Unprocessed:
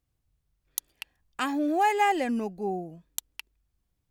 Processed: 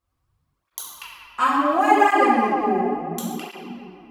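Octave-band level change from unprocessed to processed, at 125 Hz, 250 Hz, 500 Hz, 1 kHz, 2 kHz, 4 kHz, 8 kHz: n/a, +6.5 dB, +8.5 dB, +9.5 dB, +8.5 dB, +4.0 dB, +1.5 dB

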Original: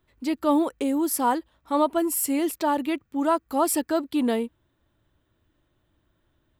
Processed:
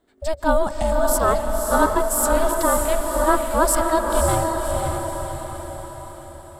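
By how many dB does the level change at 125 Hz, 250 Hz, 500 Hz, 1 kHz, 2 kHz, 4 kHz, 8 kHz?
n/a, -2.5 dB, +7.5 dB, +6.0 dB, +10.0 dB, +4.0 dB, +7.5 dB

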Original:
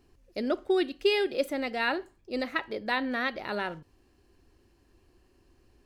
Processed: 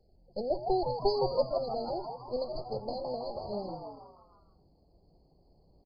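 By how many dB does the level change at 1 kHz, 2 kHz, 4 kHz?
-0.5 dB, under -40 dB, -8.0 dB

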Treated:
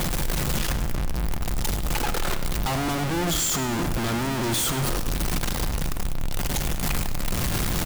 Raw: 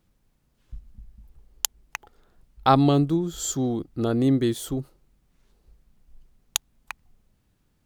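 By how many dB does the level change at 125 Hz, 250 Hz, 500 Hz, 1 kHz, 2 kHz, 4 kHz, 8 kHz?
+2.0, -3.5, -2.0, -1.0, +10.0, +6.0, +5.5 dB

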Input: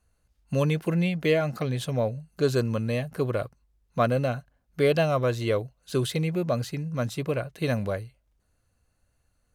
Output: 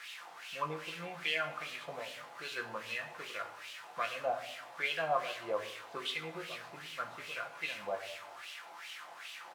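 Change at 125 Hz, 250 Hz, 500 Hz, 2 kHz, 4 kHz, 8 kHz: -28.5, -24.0, -14.5, -2.5, -2.5, -8.5 dB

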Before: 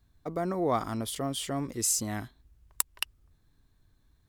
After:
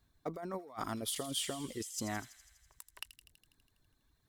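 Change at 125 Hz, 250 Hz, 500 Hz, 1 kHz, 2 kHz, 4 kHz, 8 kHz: -10.5, -8.5, -10.0, -9.0, -5.5, -3.5, -10.5 dB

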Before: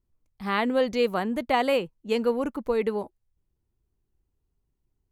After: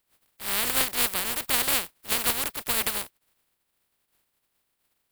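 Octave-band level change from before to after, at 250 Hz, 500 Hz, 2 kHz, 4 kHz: -12.5, -14.0, +2.5, +8.0 dB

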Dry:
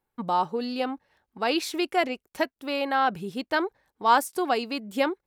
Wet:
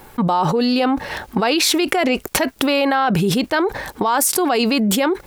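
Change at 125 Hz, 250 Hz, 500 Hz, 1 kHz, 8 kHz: +20.5, +12.5, +8.5, +5.0, +19.0 dB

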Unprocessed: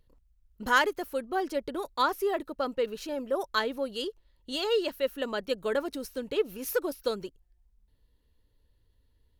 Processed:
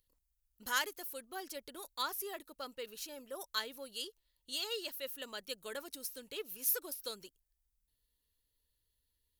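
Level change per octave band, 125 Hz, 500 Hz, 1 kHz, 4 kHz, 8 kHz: n/a, -16.5 dB, -13.0 dB, -4.5 dB, +3.0 dB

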